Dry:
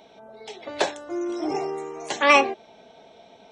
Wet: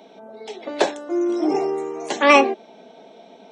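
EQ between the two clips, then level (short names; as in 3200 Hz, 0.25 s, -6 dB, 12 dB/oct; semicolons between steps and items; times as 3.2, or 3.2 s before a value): HPF 200 Hz 24 dB/oct; low shelf 460 Hz +10 dB; +1.0 dB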